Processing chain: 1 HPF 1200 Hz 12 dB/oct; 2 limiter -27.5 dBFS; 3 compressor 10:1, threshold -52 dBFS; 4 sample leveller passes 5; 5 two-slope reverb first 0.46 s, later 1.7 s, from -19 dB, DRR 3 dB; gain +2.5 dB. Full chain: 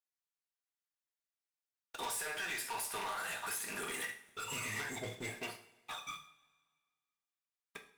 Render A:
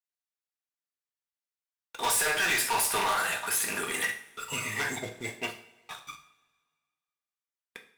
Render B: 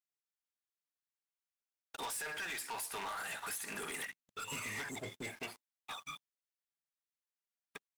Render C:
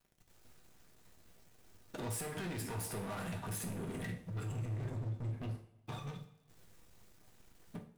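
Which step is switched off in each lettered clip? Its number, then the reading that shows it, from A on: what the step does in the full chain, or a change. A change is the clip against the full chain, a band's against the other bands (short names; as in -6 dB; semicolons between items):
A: 3, mean gain reduction 8.0 dB; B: 5, crest factor change -6.0 dB; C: 1, 125 Hz band +21.0 dB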